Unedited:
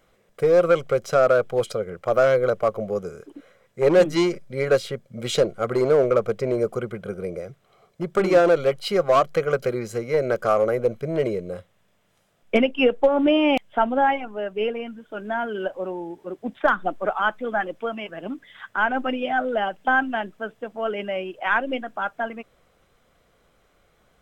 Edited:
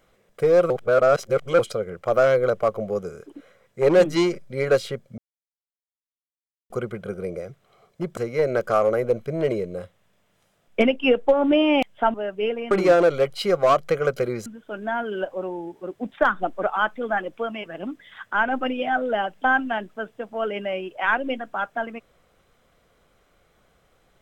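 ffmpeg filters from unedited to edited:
-filter_complex "[0:a]asplit=9[a][b][c][d][e][f][g][h][i];[a]atrim=end=0.702[j];[b]atrim=start=0.698:end=1.592,asetpts=PTS-STARTPTS,areverse[k];[c]atrim=start=1.588:end=5.18,asetpts=PTS-STARTPTS,afade=t=out:st=3.588:d=0.004:c=hsin[l];[d]atrim=start=5.18:end=6.7,asetpts=PTS-STARTPTS,volume=0[m];[e]atrim=start=6.7:end=8.172,asetpts=PTS-STARTPTS,afade=t=in:d=0.004:c=hsin[n];[f]atrim=start=9.918:end=13.892[o];[g]atrim=start=14.318:end=14.892[p];[h]atrim=start=8.168:end=9.922[q];[i]atrim=start=14.888[r];[j][k]acrossfade=d=0.004:c1=hsin:c2=hsin[s];[l][m][n]concat=n=3:v=0:a=1[t];[s][t]acrossfade=d=0.004:c1=hsin:c2=hsin[u];[u][o]acrossfade=d=0.004:c1=hsin:c2=hsin[v];[v][p]acrossfade=d=0.004:c1=hsin:c2=hsin[w];[w][q]acrossfade=d=0.004:c1=hsin:c2=hsin[x];[x][r]acrossfade=d=0.004:c1=hsin:c2=hsin"

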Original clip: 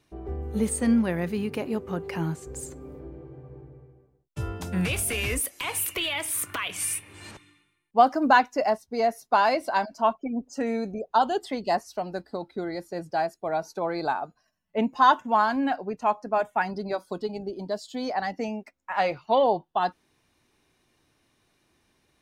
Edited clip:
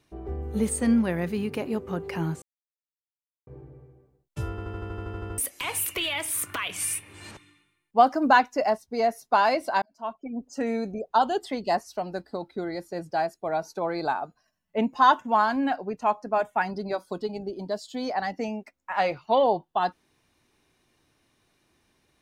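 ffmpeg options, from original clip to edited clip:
-filter_complex "[0:a]asplit=15[a][b][c][d][e][f][g][h][i][j][k][l][m][n][o];[a]atrim=end=2.42,asetpts=PTS-STARTPTS,afade=t=out:st=2.416:d=0.004:c=hsin[p];[b]atrim=start=2.42:end=3.47,asetpts=PTS-STARTPTS,volume=0[q];[c]atrim=start=3.47:end=4.582,asetpts=PTS-STARTPTS,afade=t=in:d=0.004:c=hsin[r];[d]atrim=start=4.498:end=4.582[s];[e]atrim=start=4.498:end=4.582[t];[f]atrim=start=4.498:end=4.582[u];[g]atrim=start=4.498:end=4.582[v];[h]atrim=start=4.498:end=4.582[w];[i]atrim=start=4.498:end=4.582[x];[j]atrim=start=4.498:end=4.582[y];[k]atrim=start=4.498:end=4.582[z];[l]atrim=start=4.498:end=4.582[aa];[m]atrim=start=4.498:end=4.582[ab];[n]atrim=start=5.378:end=9.82,asetpts=PTS-STARTPTS,afade=t=out:st=4.438:d=0.004:c=hsin[ac];[o]atrim=start=9.82,asetpts=PTS-STARTPTS,afade=t=in:d=0.81[ad];[p][q][r]concat=n=3:v=0:a=1[ae];[ae][s]acrossfade=d=0.004:c1=hsin:c2=hsin[af];[af][t]acrossfade=d=0.004:c1=hsin:c2=hsin[ag];[ag][u]acrossfade=d=0.004:c1=hsin:c2=hsin[ah];[ah][v]acrossfade=d=0.004:c1=hsin:c2=hsin[ai];[ai][w]acrossfade=d=0.004:c1=hsin:c2=hsin[aj];[aj][x]acrossfade=d=0.004:c1=hsin:c2=hsin[ak];[ak][y]acrossfade=d=0.004:c1=hsin:c2=hsin[al];[al][z]acrossfade=d=0.004:c1=hsin:c2=hsin[am];[am][aa]acrossfade=d=0.004:c1=hsin:c2=hsin[an];[an][ab]acrossfade=d=0.004:c1=hsin:c2=hsin[ao];[ac][ad]concat=n=2:v=0:a=1[ap];[ao][ap]acrossfade=d=0.004:c1=hsin:c2=hsin"

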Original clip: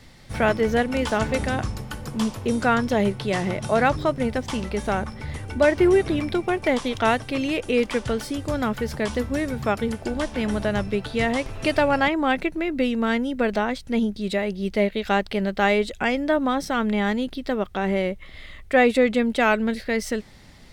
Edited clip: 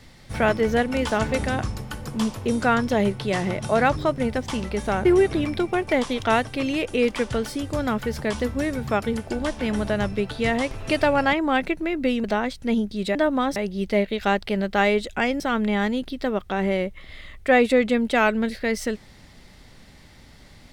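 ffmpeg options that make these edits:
-filter_complex "[0:a]asplit=6[a][b][c][d][e][f];[a]atrim=end=5.052[g];[b]atrim=start=5.798:end=12.992[h];[c]atrim=start=13.488:end=14.402[i];[d]atrim=start=16.238:end=16.652[j];[e]atrim=start=14.398:end=16.242[k];[f]atrim=start=16.648[l];[g][h]acrossfade=d=0.004:c1=hsin:c2=hsin[m];[m][i]acrossfade=d=0.004:c1=hsin:c2=hsin[n];[n][j]acrossfade=d=0.004:c1=hsin:c2=hsin[o];[o][k]acrossfade=d=0.004:c1=hsin:c2=hsin[p];[p][l]acrossfade=d=0.004:c1=hsin:c2=hsin"

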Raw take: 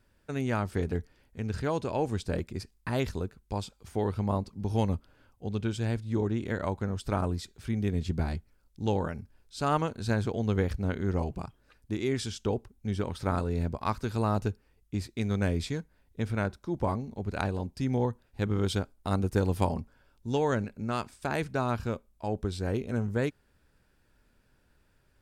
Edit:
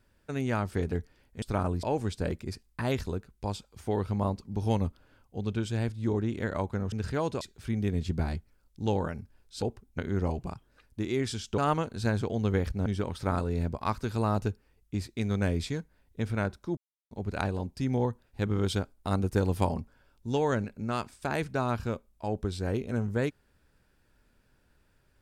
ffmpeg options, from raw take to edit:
-filter_complex "[0:a]asplit=11[a][b][c][d][e][f][g][h][i][j][k];[a]atrim=end=1.422[l];[b]atrim=start=6.998:end=7.412[m];[c]atrim=start=1.908:end=7.002[n];[d]atrim=start=1.418:end=1.912[o];[e]atrim=start=7.408:end=9.622[p];[f]atrim=start=12.498:end=12.862[q];[g]atrim=start=10.898:end=12.502[r];[h]atrim=start=9.618:end=10.902[s];[i]atrim=start=12.858:end=16.77,asetpts=PTS-STARTPTS,afade=t=out:st=3.908:d=0.004:c=hsin[t];[j]atrim=start=16.77:end=17.11,asetpts=PTS-STARTPTS,volume=0[u];[k]atrim=start=17.11,asetpts=PTS-STARTPTS,afade=t=in:d=0.004:c=hsin[v];[l][m]acrossfade=d=0.004:c1=hsin:c2=hsin[w];[w][n]acrossfade=d=0.004:c1=hsin:c2=hsin[x];[x][o]acrossfade=d=0.004:c1=hsin:c2=hsin[y];[y][p]acrossfade=d=0.004:c1=hsin:c2=hsin[z];[z][q]acrossfade=d=0.004:c1=hsin:c2=hsin[aa];[aa][r]acrossfade=d=0.004:c1=hsin:c2=hsin[ab];[ab][s]acrossfade=d=0.004:c1=hsin:c2=hsin[ac];[t][u][v]concat=n=3:v=0:a=1[ad];[ac][ad]acrossfade=d=0.004:c1=hsin:c2=hsin"

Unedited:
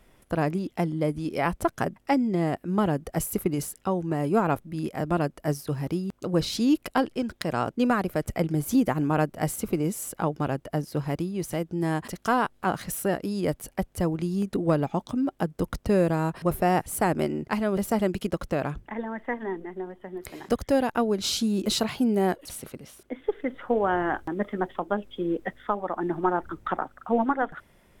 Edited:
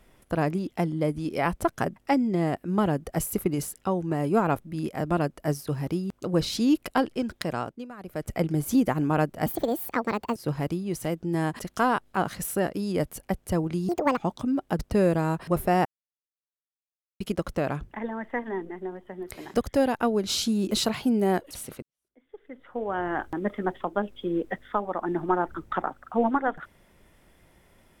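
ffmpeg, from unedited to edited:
-filter_complex "[0:a]asplit=11[a][b][c][d][e][f][g][h][i][j][k];[a]atrim=end=7.86,asetpts=PTS-STARTPTS,afade=t=out:st=7.42:d=0.44:silence=0.105925[l];[b]atrim=start=7.86:end=7.97,asetpts=PTS-STARTPTS,volume=-19.5dB[m];[c]atrim=start=7.97:end=9.464,asetpts=PTS-STARTPTS,afade=t=in:d=0.44:silence=0.105925[n];[d]atrim=start=9.46:end=10.84,asetpts=PTS-STARTPTS,asetrate=67914,aresample=44100,atrim=end_sample=39518,asetpts=PTS-STARTPTS[o];[e]atrim=start=10.836:end=14.374[p];[f]atrim=start=14.37:end=14.87,asetpts=PTS-STARTPTS,asetrate=76734,aresample=44100,atrim=end_sample=12672,asetpts=PTS-STARTPTS[q];[g]atrim=start=14.866:end=15.492[r];[h]atrim=start=15.738:end=16.8,asetpts=PTS-STARTPTS,afade=t=out:st=1.058:d=0.004:c=hsin[s];[i]atrim=start=16.8:end=18.15,asetpts=PTS-STARTPTS,volume=0[t];[j]atrim=start=18.15:end=22.77,asetpts=PTS-STARTPTS,afade=t=in:d=0.004:c=hsin,afade=t=out:st=4.616:d=0.004:c=hsin[u];[k]atrim=start=22.77,asetpts=PTS-STARTPTS,afade=t=in:d=1.5:c=qua[v];[l][m][n]concat=n=3:v=0:a=1[w];[w][o]acrossfade=d=0.004:c1=hsin:c2=hsin[x];[x][p]acrossfade=d=0.004:c1=hsin:c2=hsin[y];[y][q]acrossfade=d=0.004:c1=hsin:c2=hsin[z];[z][r]acrossfade=d=0.004:c1=hsin:c2=hsin[aa];[s][t][u][v]concat=n=4:v=0:a=1[ab];[aa][ab]acrossfade=d=0.004:c1=hsin:c2=hsin"

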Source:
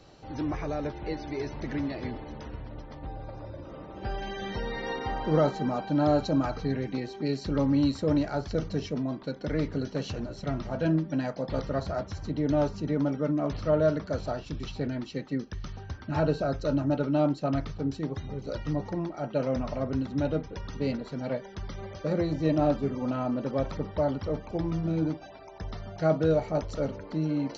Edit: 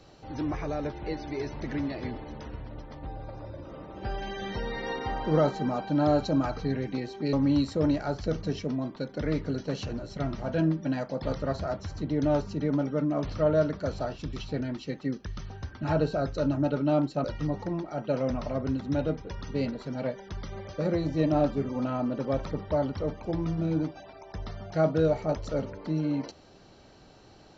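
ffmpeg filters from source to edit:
-filter_complex "[0:a]asplit=3[a][b][c];[a]atrim=end=7.332[d];[b]atrim=start=7.598:end=17.512[e];[c]atrim=start=18.498[f];[d][e]acrossfade=d=0.004:c1=hsin:c2=hsin[g];[g][f]acrossfade=d=0.004:c1=hsin:c2=hsin"

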